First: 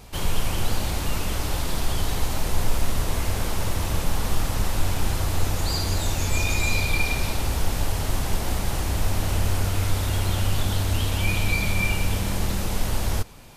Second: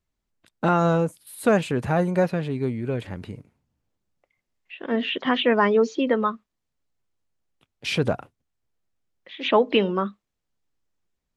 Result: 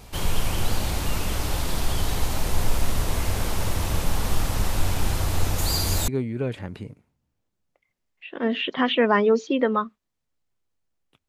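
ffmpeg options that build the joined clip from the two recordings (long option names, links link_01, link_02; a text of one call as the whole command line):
ffmpeg -i cue0.wav -i cue1.wav -filter_complex "[0:a]asettb=1/sr,asplit=3[link_01][link_02][link_03];[link_01]atrim=end=5.584[link_04];[link_02]atrim=start=5.58:end=6.08,asetpts=PTS-STARTPTS,afade=type=in:duration=0.004:curve=qsin,afade=type=out:start_time=0.496:duration=0.004:curve=qsin,highshelf=frequency=8200:gain=10[link_05];[link_03]atrim=start=6.076[link_06];[link_04][link_05]acrossfade=duration=0.004:curve1=hsin:curve2=qsin[link_07];[link_07][link_06]acrossfade=duration=0.004:curve1=qsin:curve2=hsin,apad=whole_dur=11.28,atrim=end=11.28,atrim=end=6.082[link_08];[1:a]atrim=start=2.558:end=7.76[link_09];[link_08][link_09]acrossfade=duration=0.004:curve1=hsin:curve2=hsin" out.wav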